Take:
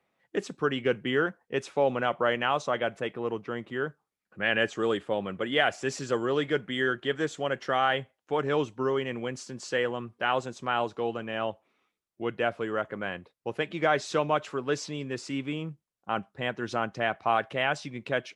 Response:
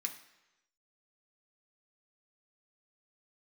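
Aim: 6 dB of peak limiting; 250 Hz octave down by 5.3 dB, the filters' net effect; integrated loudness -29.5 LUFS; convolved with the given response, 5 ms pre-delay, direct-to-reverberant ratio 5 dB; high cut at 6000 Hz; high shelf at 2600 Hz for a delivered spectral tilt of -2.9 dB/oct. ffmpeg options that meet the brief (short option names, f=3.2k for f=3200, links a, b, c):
-filter_complex "[0:a]lowpass=6k,equalizer=f=250:t=o:g=-7,highshelf=f=2.6k:g=-5,alimiter=limit=-18.5dB:level=0:latency=1,asplit=2[a][b];[1:a]atrim=start_sample=2205,adelay=5[c];[b][c]afir=irnorm=-1:irlink=0,volume=-4.5dB[d];[a][d]amix=inputs=2:normalize=0,volume=3dB"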